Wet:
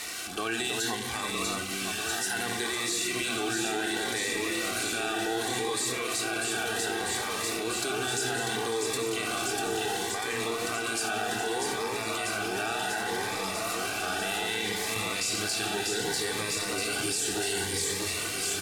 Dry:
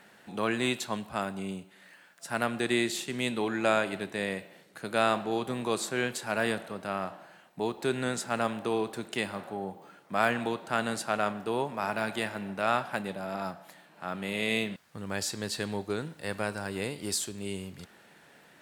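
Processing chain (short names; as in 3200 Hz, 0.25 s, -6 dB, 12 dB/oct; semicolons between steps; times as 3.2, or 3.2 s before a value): zero-crossing step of -38 dBFS; tilt +3.5 dB/oct; notches 50/100/150/200/250/300/350 Hz; on a send at -8 dB: reverb RT60 2.0 s, pre-delay 3 ms; on the sum: limiter -19.5 dBFS, peak gain reduction 12 dB; LPF 9700 Hz 12 dB/oct; comb 2.6 ms, depth 64%; echo with dull and thin repeats by turns 0.322 s, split 1900 Hz, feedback 86%, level -2.5 dB; in parallel at +2.5 dB: negative-ratio compressor -31 dBFS; on the sum: low shelf 160 Hz +8 dB; cascading phaser rising 0.66 Hz; gain -6.5 dB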